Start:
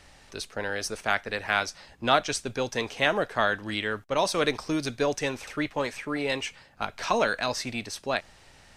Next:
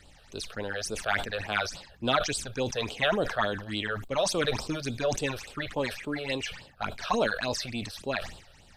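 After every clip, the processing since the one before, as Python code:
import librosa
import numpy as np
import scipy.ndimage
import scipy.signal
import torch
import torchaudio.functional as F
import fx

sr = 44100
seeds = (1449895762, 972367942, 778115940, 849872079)

y = fx.phaser_stages(x, sr, stages=8, low_hz=260.0, high_hz=2000.0, hz=3.5, feedback_pct=20)
y = fx.sustainer(y, sr, db_per_s=93.0)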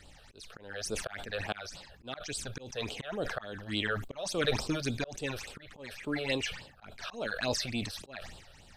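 y = fx.dynamic_eq(x, sr, hz=1000.0, q=4.1, threshold_db=-45.0, ratio=4.0, max_db=-4)
y = fx.auto_swell(y, sr, attack_ms=395.0)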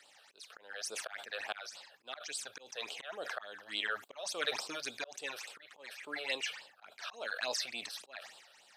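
y = scipy.signal.sosfilt(scipy.signal.butter(2, 680.0, 'highpass', fs=sr, output='sos'), x)
y = y * 10.0 ** (-2.0 / 20.0)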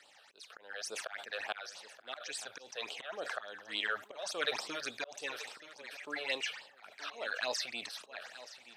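y = fx.high_shelf(x, sr, hz=6400.0, db=-6.5)
y = y + 10.0 ** (-15.5 / 20.0) * np.pad(y, (int(927 * sr / 1000.0), 0))[:len(y)]
y = y * 10.0 ** (1.5 / 20.0)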